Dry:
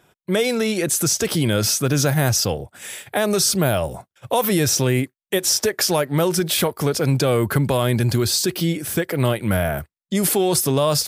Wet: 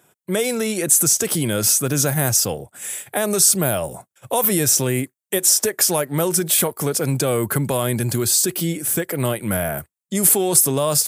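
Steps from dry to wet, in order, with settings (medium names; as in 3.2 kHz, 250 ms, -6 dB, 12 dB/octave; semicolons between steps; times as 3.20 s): high-pass 110 Hz; resonant high shelf 6.2 kHz +7.5 dB, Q 1.5; trim -1.5 dB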